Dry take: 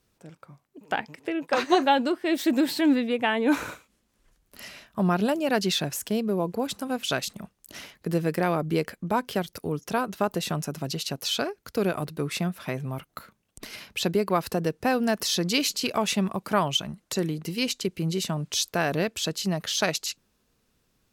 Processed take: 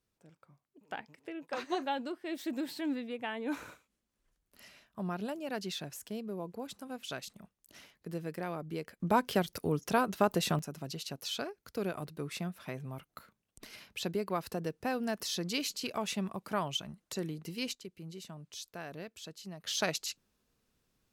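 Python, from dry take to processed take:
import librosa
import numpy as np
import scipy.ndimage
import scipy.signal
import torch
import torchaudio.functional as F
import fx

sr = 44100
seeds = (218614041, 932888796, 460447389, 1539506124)

y = fx.gain(x, sr, db=fx.steps((0.0, -13.5), (9.0, -2.0), (10.59, -10.0), (17.75, -18.5), (19.66, -7.0)))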